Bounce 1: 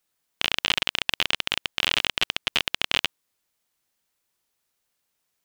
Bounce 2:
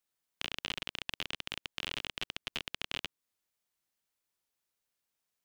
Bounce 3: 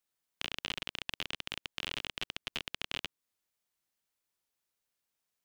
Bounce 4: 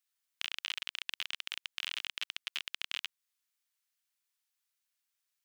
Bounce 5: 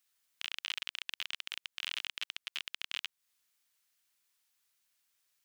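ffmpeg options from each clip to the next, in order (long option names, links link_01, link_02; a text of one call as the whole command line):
ffmpeg -i in.wav -filter_complex "[0:a]acrossover=split=440[link_01][link_02];[link_02]acompressor=threshold=-28dB:ratio=2[link_03];[link_01][link_03]amix=inputs=2:normalize=0,volume=-9dB" out.wav
ffmpeg -i in.wav -af anull out.wav
ffmpeg -i in.wav -af "highpass=1400,volume=1dB" out.wav
ffmpeg -i in.wav -af "alimiter=level_in=3dB:limit=-24dB:level=0:latency=1:release=262,volume=-3dB,volume=7dB" out.wav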